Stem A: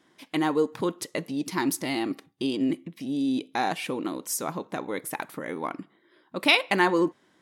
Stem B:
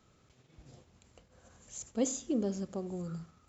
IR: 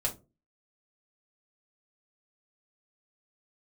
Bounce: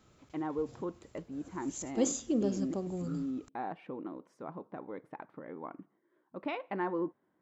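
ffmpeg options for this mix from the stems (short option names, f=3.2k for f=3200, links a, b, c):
-filter_complex "[0:a]lowpass=1.2k,volume=-10.5dB[a];[1:a]volume=1.5dB[b];[a][b]amix=inputs=2:normalize=0"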